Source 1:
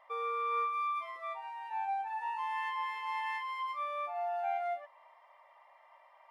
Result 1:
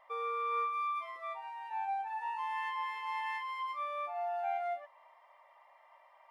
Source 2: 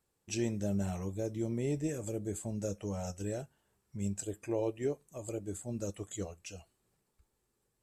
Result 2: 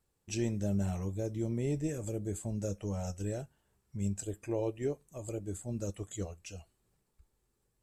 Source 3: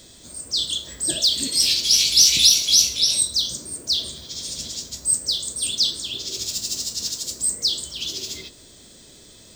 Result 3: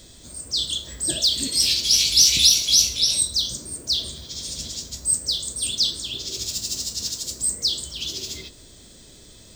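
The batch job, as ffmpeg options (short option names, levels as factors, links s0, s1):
-af "lowshelf=f=95:g=9.5,volume=0.891"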